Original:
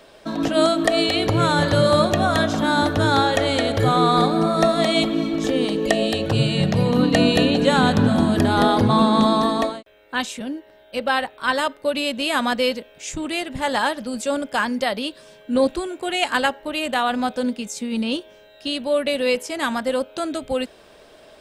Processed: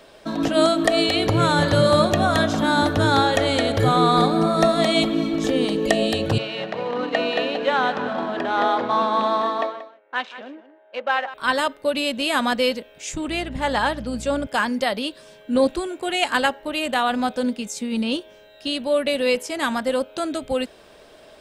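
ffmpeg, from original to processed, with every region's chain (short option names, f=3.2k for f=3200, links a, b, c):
-filter_complex "[0:a]asettb=1/sr,asplit=3[a][b][c];[a]atrim=end=6.384[d];[b]atrim=start=6.38:end=11.34,asetpts=PTS-STARTPTS,afade=t=in:d=0.004:c=qsin,afade=t=out:st=4.956:d=0.004:c=qsin,adynamicsmooth=sensitivity=6.5:basefreq=1.3k,highpass=530,lowpass=2.7k,aecho=1:1:182:0.188,atrim=end_sample=218736[e];[c]atrim=start=11.336[f];[d][e]acrossfade=d=0.004:c1=hsin:c2=qsin[g];[g][f]acrossfade=d=0.004:c1=qsin:c2=hsin,asettb=1/sr,asplit=3[h][i][j];[h]atrim=end=13.284[k];[i]atrim=start=13.28:end=14.47,asetpts=PTS-STARTPTS,afade=t=in:d=0.004:c=qsin,afade=t=out:st=1.186:d=0.004:c=qsin,highshelf=f=6.7k:g=-8.5,aeval=exprs='val(0)+0.0178*(sin(2*PI*60*n/s)+sin(2*PI*2*60*n/s)/2+sin(2*PI*3*60*n/s)/3+sin(2*PI*4*60*n/s)/4+sin(2*PI*5*60*n/s)/5)':c=same[l];[j]atrim=start=14.466[m];[k][l]acrossfade=d=0.004:c1=hsin:c2=qsin[n];[n][m]acrossfade=d=0.004:c1=qsin:c2=hsin"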